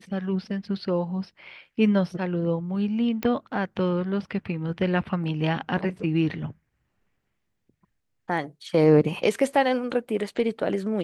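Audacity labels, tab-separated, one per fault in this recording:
3.230000	3.230000	click −15 dBFS

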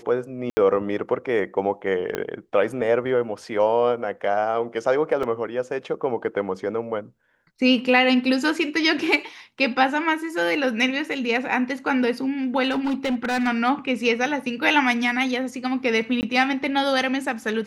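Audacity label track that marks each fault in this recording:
0.500000	0.570000	drop-out 70 ms
2.150000	2.150000	click −11 dBFS
5.230000	5.230000	drop-out 3.9 ms
12.700000	13.480000	clipping −19.5 dBFS
16.210000	16.230000	drop-out 19 ms

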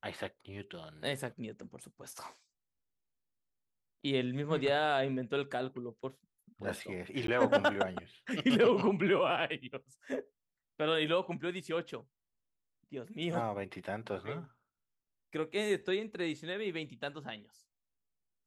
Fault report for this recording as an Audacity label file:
7.270000	7.280000	drop-out

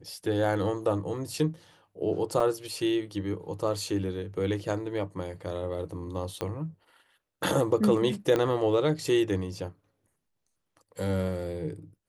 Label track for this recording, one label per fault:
2.400000	2.400000	drop-out 4 ms
6.410000	6.410000	click −16 dBFS
8.360000	8.360000	click −14 dBFS

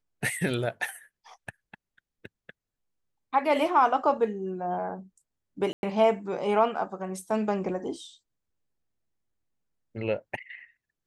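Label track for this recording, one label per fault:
5.730000	5.830000	drop-out 101 ms

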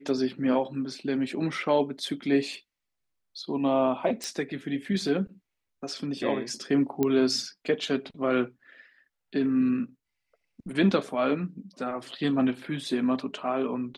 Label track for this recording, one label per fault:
4.240000	4.240000	click
7.030000	7.030000	click −13 dBFS

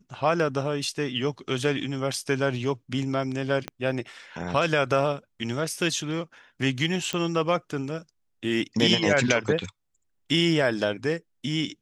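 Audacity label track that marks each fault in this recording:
3.680000	3.680000	click −16 dBFS
7.130000	7.130000	click −14 dBFS

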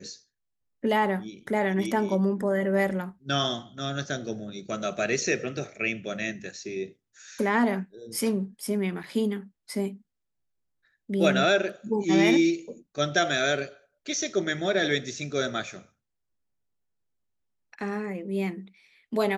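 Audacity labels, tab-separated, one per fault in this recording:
9.030000	9.040000	drop-out 6.2 ms

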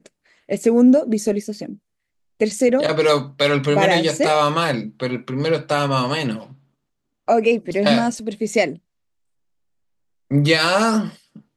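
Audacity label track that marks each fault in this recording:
2.590000	2.590000	drop-out 4.9 ms

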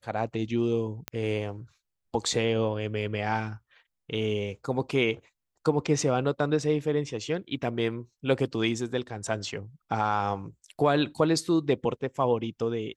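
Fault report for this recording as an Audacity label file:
1.080000	1.080000	click −15 dBFS

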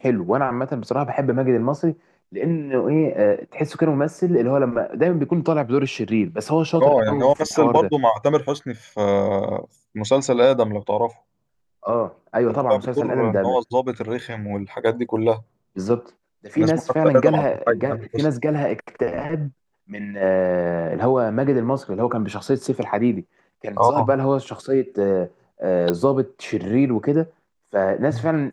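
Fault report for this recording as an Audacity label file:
25.900000	25.900000	click −9 dBFS

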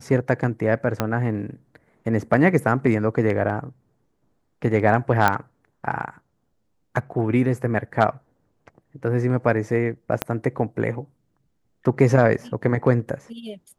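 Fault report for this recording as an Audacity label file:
1.000000	1.000000	click −7 dBFS
5.280000	5.280000	click −5 dBFS
10.220000	10.220000	click −6 dBFS

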